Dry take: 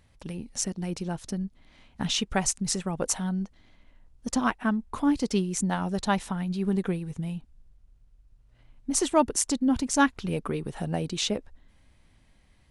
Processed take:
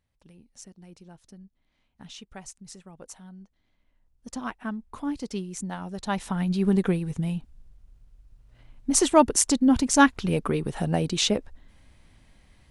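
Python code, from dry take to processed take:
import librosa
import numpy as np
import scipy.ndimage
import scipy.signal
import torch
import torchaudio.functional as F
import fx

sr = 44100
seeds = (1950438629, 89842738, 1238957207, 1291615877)

y = fx.gain(x, sr, db=fx.line((3.37, -16.5), (4.64, -6.5), (5.97, -6.5), (6.42, 4.5)))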